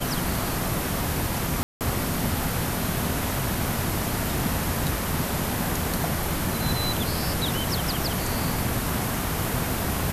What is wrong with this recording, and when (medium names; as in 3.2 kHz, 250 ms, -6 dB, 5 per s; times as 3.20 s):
1.63–1.81 s: dropout 178 ms